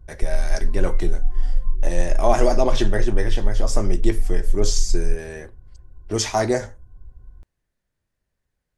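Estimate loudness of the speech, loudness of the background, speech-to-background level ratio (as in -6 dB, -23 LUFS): -25.0 LUFS, -28.0 LUFS, 3.0 dB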